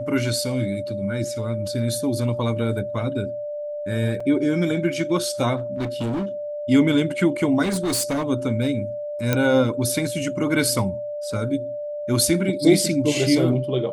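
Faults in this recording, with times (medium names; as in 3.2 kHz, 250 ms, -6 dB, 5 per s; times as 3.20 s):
whine 590 Hz -27 dBFS
4.20 s: dropout 4.5 ms
5.56–6.26 s: clipped -22 dBFS
7.62–8.29 s: clipped -19.5 dBFS
9.33 s: pop -6 dBFS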